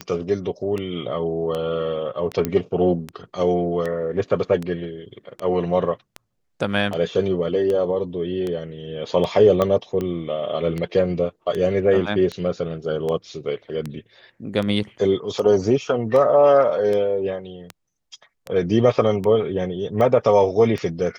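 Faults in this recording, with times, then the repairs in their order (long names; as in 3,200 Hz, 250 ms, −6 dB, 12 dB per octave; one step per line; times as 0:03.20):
scratch tick 78 rpm −15 dBFS
0:02.45: click −8 dBFS
0:09.62: click −8 dBFS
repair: click removal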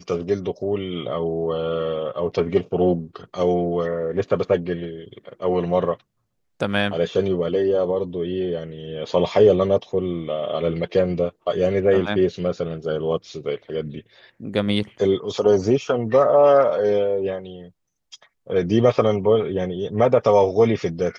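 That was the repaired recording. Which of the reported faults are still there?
0:02.45: click
0:09.62: click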